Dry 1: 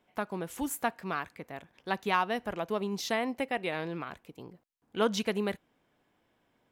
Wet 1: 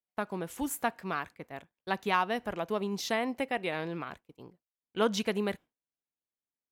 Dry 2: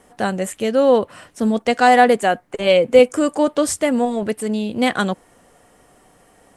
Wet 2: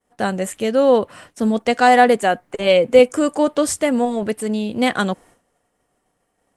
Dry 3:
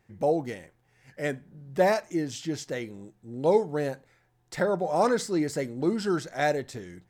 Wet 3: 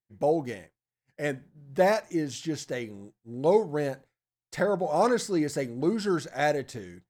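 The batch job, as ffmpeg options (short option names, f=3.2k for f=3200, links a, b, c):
-af "agate=range=-33dB:threshold=-41dB:ratio=3:detection=peak"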